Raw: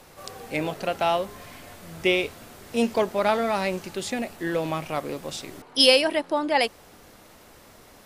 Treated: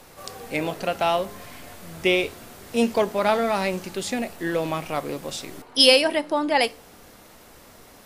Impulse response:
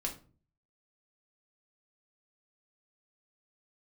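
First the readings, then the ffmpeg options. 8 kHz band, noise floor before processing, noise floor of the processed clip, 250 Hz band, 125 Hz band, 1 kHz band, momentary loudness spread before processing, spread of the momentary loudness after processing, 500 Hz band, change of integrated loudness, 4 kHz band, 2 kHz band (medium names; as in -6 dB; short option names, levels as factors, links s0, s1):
+3.0 dB, -51 dBFS, -49 dBFS, +1.5 dB, +1.0 dB, +1.5 dB, 17 LU, 19 LU, +1.5 dB, +1.5 dB, +2.0 dB, +1.5 dB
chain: -filter_complex "[0:a]asplit=2[s0][s1];[1:a]atrim=start_sample=2205,highshelf=f=5600:g=10.5[s2];[s1][s2]afir=irnorm=-1:irlink=0,volume=0.2[s3];[s0][s3]amix=inputs=2:normalize=0"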